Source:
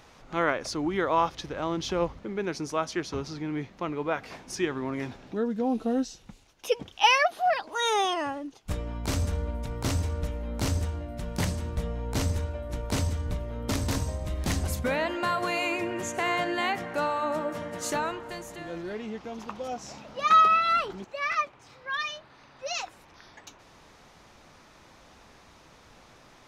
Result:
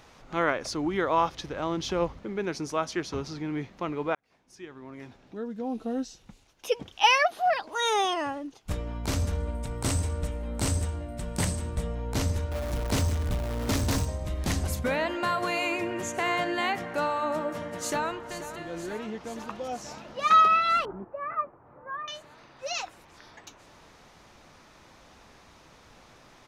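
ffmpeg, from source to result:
ffmpeg -i in.wav -filter_complex "[0:a]asettb=1/sr,asplit=3[link_01][link_02][link_03];[link_01]atrim=end=9.404[link_04];[link_02]atrim=start=9.4:end=11.95,asetpts=PTS-STARTPTS,afade=type=in:duration=0.004:curve=qsin,afade=type=out:start_time=2.546:duration=0.004:curve=qsin,equalizer=frequency=8400:width=4.3:gain=12.5[link_05];[link_03]atrim=start=11.946[link_06];[link_04][link_05]acrossfade=duration=0.004:curve1=hsin:curve2=qsin[link_07];[link_07][link_06]acrossfade=duration=0.004:curve1=qsin:curve2=hsin,asettb=1/sr,asplit=3[link_08][link_09][link_10];[link_08]atrim=end=12.514[link_11];[link_09]atrim=start=12.51:end=14.05,asetpts=PTS-STARTPTS,afade=type=in:duration=0.004:curve=qsin,afade=type=out:start_time=1.536:duration=0.004:curve=qsin,aeval=exprs='val(0)+0.5*0.0251*sgn(val(0))':channel_layout=same[link_12];[link_10]atrim=start=14.046[link_13];[link_11][link_12]acrossfade=duration=0.004:curve1=hsin:curve2=qsin[link_14];[link_14][link_13]acrossfade=duration=0.004:curve1=qsin:curve2=hsin,asplit=2[link_15][link_16];[link_16]afade=type=in:start_time=17.76:duration=0.01,afade=type=out:start_time=18.69:duration=0.01,aecho=0:1:480|960|1440|1920|2400|2880|3360|3840|4320|4800|5280|5760:0.237137|0.18971|0.151768|0.121414|0.0971315|0.0777052|0.0621641|0.0497313|0.039785|0.031828|0.0254624|0.0203699[link_17];[link_15][link_17]amix=inputs=2:normalize=0,asettb=1/sr,asplit=3[link_18][link_19][link_20];[link_18]atrim=end=20.854[link_21];[link_19]atrim=start=20.85:end=22.08,asetpts=PTS-STARTPTS,afade=type=in:duration=0.004:curve=qsin,afade=type=out:start_time=1.226:duration=0.004:curve=qsin,lowpass=frequency=1300:width=0.5412,lowpass=frequency=1300:width=1.3066[link_22];[link_20]atrim=start=22.076[link_23];[link_21][link_22]acrossfade=duration=0.004:curve1=hsin:curve2=qsin[link_24];[link_24][link_23]acrossfade=duration=0.004:curve1=qsin:curve2=hsin,asplit=2[link_25][link_26];[link_25]atrim=end=4.15,asetpts=PTS-STARTPTS,afade=type=out:start_time=4.146:duration=0.004:curve=hsin[link_27];[link_26]atrim=start=4.15,asetpts=PTS-STARTPTS,afade=type=in:duration=2.85[link_28];[link_27][link_28]concat=n=2:v=0:a=1" out.wav

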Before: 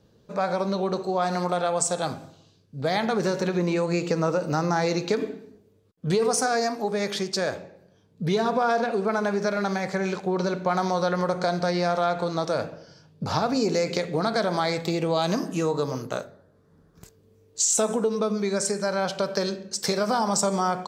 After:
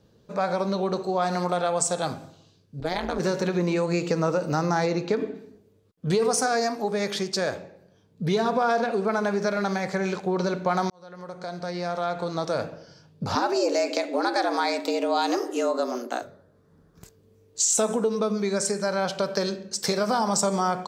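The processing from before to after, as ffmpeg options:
ffmpeg -i in.wav -filter_complex "[0:a]asettb=1/sr,asplit=3[link_01][link_02][link_03];[link_01]atrim=end=2.804[link_04];[link_02]atrim=start=2.8:end=3.2,asetpts=PTS-STARTPTS,afade=type=in:duration=0.004:curve=qsin,afade=type=out:start_time=0.396:duration=0.004:curve=qsin,tremolo=f=170:d=1[link_05];[link_03]atrim=start=3.196[link_06];[link_04][link_05]acrossfade=duration=0.004:curve1=hsin:curve2=qsin[link_07];[link_07][link_06]acrossfade=duration=0.004:curve1=qsin:curve2=hsin,asplit=3[link_08][link_09][link_10];[link_08]afade=type=out:start_time=4.85:duration=0.02[link_11];[link_09]highshelf=frequency=3800:gain=-11.5,afade=type=in:start_time=4.85:duration=0.02,afade=type=out:start_time=5.34:duration=0.02[link_12];[link_10]afade=type=in:start_time=5.34:duration=0.02[link_13];[link_11][link_12][link_13]amix=inputs=3:normalize=0,asettb=1/sr,asplit=3[link_14][link_15][link_16];[link_14]atrim=end=13.354[link_17];[link_15]atrim=start=13.35:end=16.22,asetpts=PTS-STARTPTS,afade=type=in:duration=0.004:curve=qsin,afade=type=out:start_time=2.866:duration=0.004:curve=qsin,afreqshift=120[link_18];[link_16]atrim=start=16.216[link_19];[link_17][link_18]acrossfade=duration=0.004:curve1=hsin:curve2=qsin[link_20];[link_20][link_19]acrossfade=duration=0.004:curve1=qsin:curve2=hsin,asplit=2[link_21][link_22];[link_21]atrim=end=10.9,asetpts=PTS-STARTPTS,afade=type=out:start_time=10.896:duration=0.004:curve=hsin[link_23];[link_22]atrim=start=10.9,asetpts=PTS-STARTPTS,afade=type=in:duration=1.81[link_24];[link_23][link_24]concat=n=2:v=0:a=1" out.wav

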